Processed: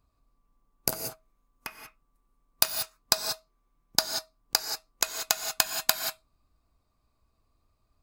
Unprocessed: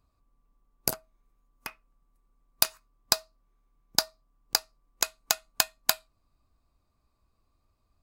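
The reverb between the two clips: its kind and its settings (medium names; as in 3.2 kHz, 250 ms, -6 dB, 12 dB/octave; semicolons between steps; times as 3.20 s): gated-style reverb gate 210 ms rising, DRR 5.5 dB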